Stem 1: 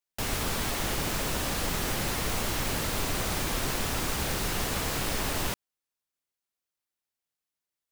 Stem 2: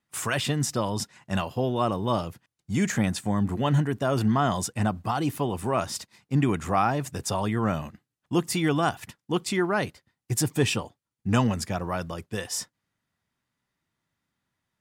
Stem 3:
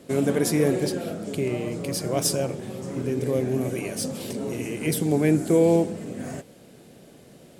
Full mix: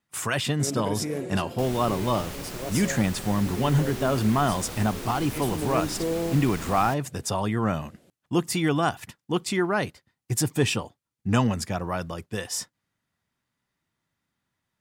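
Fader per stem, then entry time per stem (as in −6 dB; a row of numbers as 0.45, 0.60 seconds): −8.0, +0.5, −9.5 decibels; 1.40, 0.00, 0.50 seconds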